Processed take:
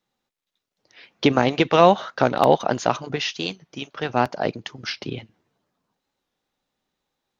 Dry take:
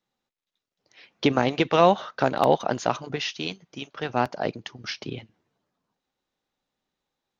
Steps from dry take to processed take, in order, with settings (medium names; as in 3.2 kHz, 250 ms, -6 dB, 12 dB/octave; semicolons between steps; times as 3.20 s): warped record 45 rpm, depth 100 cents; trim +3.5 dB